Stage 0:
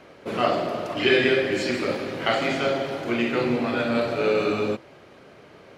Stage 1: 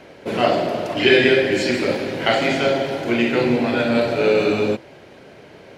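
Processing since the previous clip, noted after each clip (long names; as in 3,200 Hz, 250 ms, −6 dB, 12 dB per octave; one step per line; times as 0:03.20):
parametric band 1,200 Hz −10.5 dB 0.21 octaves
level +5.5 dB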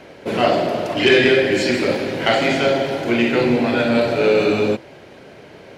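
soft clipping −6 dBFS, distortion −22 dB
level +2 dB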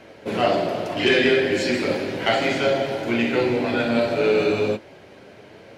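flanger 0.35 Hz, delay 8.9 ms, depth 3.3 ms, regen −41%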